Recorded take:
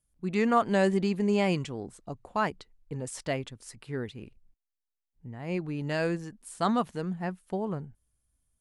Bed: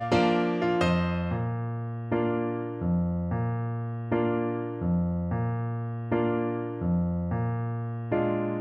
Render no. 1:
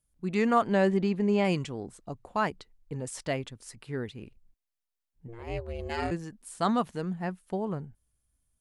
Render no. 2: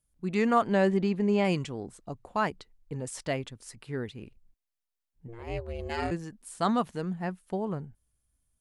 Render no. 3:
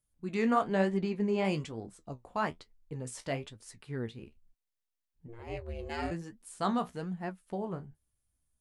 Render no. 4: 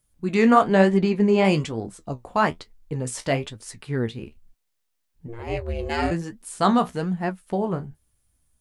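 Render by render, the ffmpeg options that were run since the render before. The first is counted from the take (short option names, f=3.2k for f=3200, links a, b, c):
-filter_complex "[0:a]asettb=1/sr,asplit=3[a][b][c];[a]atrim=end=0.674[d];[b]atrim=start=0.67:end=1.45,asetpts=PTS-STARTPTS,afade=t=in:d=0.004:c=qsin,afade=t=out:st=0.776:d=0.004:c=qsin,aemphasis=mode=reproduction:type=50fm[e];[c]atrim=start=1.446[f];[d][e]acrossfade=d=0.004:c1=hsin:c2=qsin[g];[g][f]acrossfade=d=0.004:c1=qsin:c2=hsin,asplit=3[h][i][j];[h]afade=t=out:st=5.27:d=0.02[k];[i]aeval=exprs='val(0)*sin(2*PI*230*n/s)':c=same,afade=t=in:st=5.27:d=0.02,afade=t=out:st=6.1:d=0.02[l];[j]afade=t=in:st=6.1:d=0.02[m];[k][l][m]amix=inputs=3:normalize=0"
-af anull
-af "flanger=delay=8.2:depth=9.8:regen=47:speed=1.1:shape=triangular"
-af "volume=11.5dB"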